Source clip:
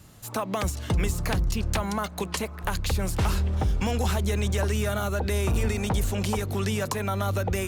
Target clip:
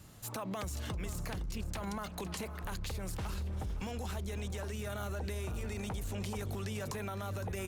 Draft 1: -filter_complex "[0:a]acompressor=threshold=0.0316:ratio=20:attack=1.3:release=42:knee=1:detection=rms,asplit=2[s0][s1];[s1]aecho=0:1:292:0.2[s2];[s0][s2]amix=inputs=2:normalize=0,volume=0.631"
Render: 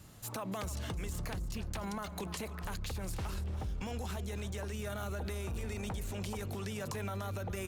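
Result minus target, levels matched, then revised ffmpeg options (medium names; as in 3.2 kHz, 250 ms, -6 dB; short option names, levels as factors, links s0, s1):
echo 220 ms early
-filter_complex "[0:a]acompressor=threshold=0.0316:ratio=20:attack=1.3:release=42:knee=1:detection=rms,asplit=2[s0][s1];[s1]aecho=0:1:512:0.2[s2];[s0][s2]amix=inputs=2:normalize=0,volume=0.631"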